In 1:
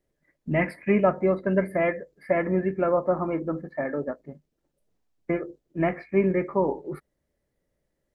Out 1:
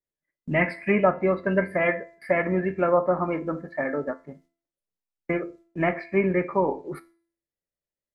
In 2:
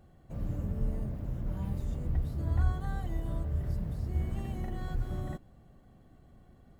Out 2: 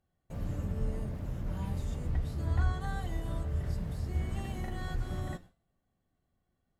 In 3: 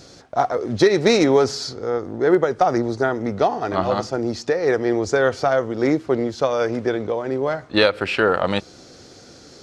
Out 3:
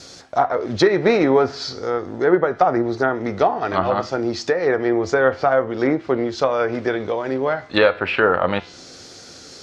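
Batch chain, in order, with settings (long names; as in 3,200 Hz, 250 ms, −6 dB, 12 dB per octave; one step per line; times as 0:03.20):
tilt shelving filter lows −4 dB
noise gate with hold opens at −46 dBFS
tuned comb filter 88 Hz, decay 0.29 s, harmonics all, mix 50%
hum removal 336.9 Hz, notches 29
treble cut that deepens with the level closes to 1,700 Hz, closed at −21 dBFS
level +7 dB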